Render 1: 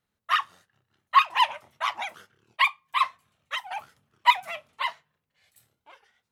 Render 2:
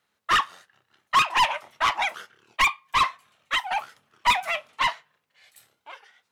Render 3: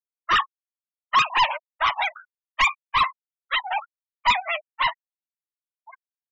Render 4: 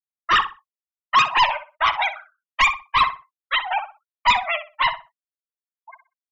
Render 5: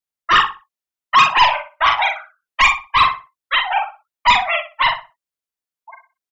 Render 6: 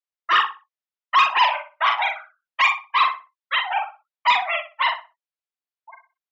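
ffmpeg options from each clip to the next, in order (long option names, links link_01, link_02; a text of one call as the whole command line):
ffmpeg -i in.wav -filter_complex "[0:a]asplit=2[link_01][link_02];[link_02]highpass=frequency=720:poles=1,volume=23dB,asoftclip=type=tanh:threshold=-4.5dB[link_03];[link_01][link_03]amix=inputs=2:normalize=0,lowpass=frequency=5900:poles=1,volume=-6dB,volume=-6.5dB" out.wav
ffmpeg -i in.wav -af "afftfilt=real='re*gte(hypot(re,im),0.0447)':imag='im*gte(hypot(re,im),0.0447)':win_size=1024:overlap=0.75,volume=1dB" out.wav
ffmpeg -i in.wav -filter_complex "[0:a]agate=range=-33dB:threshold=-48dB:ratio=3:detection=peak,asplit=2[link_01][link_02];[link_02]adelay=62,lowpass=frequency=2600:poles=1,volume=-10dB,asplit=2[link_03][link_04];[link_04]adelay=62,lowpass=frequency=2600:poles=1,volume=0.26,asplit=2[link_05][link_06];[link_06]adelay=62,lowpass=frequency=2600:poles=1,volume=0.26[link_07];[link_03][link_05][link_07]amix=inputs=3:normalize=0[link_08];[link_01][link_08]amix=inputs=2:normalize=0,volume=2.5dB" out.wav
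ffmpeg -i in.wav -filter_complex "[0:a]asplit=2[link_01][link_02];[link_02]adelay=43,volume=-4.5dB[link_03];[link_01][link_03]amix=inputs=2:normalize=0,volume=3.5dB" out.wav
ffmpeg -i in.wav -af "highpass=450,lowpass=4500,volume=-4.5dB" out.wav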